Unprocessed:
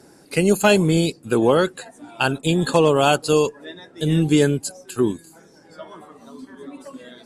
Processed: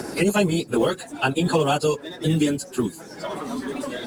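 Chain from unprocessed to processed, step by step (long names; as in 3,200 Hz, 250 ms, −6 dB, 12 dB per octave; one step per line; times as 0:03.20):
mu-law and A-law mismatch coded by mu
time stretch by phase vocoder 0.56×
multiband upward and downward compressor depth 70%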